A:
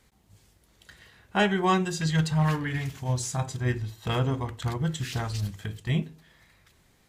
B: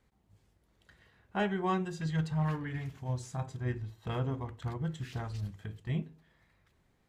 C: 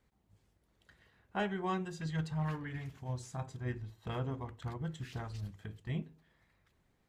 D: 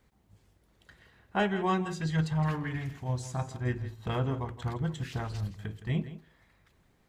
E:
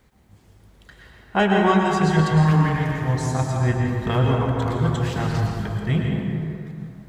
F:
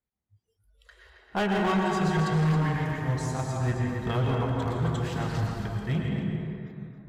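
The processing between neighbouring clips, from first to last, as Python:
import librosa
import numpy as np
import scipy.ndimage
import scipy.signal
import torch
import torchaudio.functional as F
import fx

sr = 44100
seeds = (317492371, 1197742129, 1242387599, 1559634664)

y1 = fx.high_shelf(x, sr, hz=2800.0, db=-11.5)
y1 = y1 * librosa.db_to_amplitude(-7.0)
y2 = fx.hpss(y1, sr, part='harmonic', gain_db=-3)
y2 = y2 * librosa.db_to_amplitude(-1.5)
y3 = y2 + 10.0 ** (-14.0 / 20.0) * np.pad(y2, (int(165 * sr / 1000.0), 0))[:len(y2)]
y3 = y3 * librosa.db_to_amplitude(7.0)
y4 = fx.rev_plate(y3, sr, seeds[0], rt60_s=2.7, hf_ratio=0.45, predelay_ms=95, drr_db=-0.5)
y4 = y4 * librosa.db_to_amplitude(8.5)
y5 = fx.noise_reduce_blind(y4, sr, reduce_db=27)
y5 = np.clip(y5, -10.0 ** (-15.5 / 20.0), 10.0 ** (-15.5 / 20.0))
y5 = y5 + 10.0 ** (-10.0 / 20.0) * np.pad(y5, (int(270 * sr / 1000.0), 0))[:len(y5)]
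y5 = y5 * librosa.db_to_amplitude(-6.0)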